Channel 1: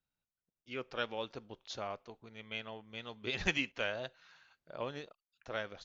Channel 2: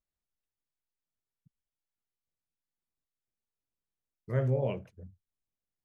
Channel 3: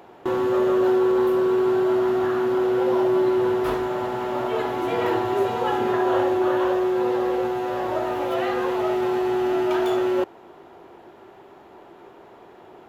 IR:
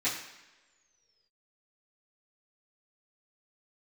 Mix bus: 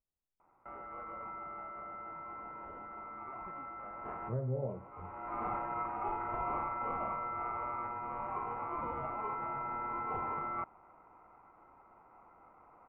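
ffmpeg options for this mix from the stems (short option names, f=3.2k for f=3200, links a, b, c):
-filter_complex "[0:a]volume=-17.5dB[a];[1:a]volume=-2dB,asplit=2[b][c];[2:a]aeval=exprs='val(0)*sin(2*PI*1700*n/s)':c=same,adelay=400,volume=-4.5dB,afade=t=in:st=3.92:d=0.45:silence=0.354813[d];[c]apad=whole_len=585988[e];[d][e]sidechaincompress=threshold=-47dB:ratio=4:attack=9.3:release=518[f];[a][b][f]amix=inputs=3:normalize=0,lowpass=f=1.1k:w=0.5412,lowpass=f=1.1k:w=1.3066,alimiter=level_in=2.5dB:limit=-24dB:level=0:latency=1:release=495,volume=-2.5dB"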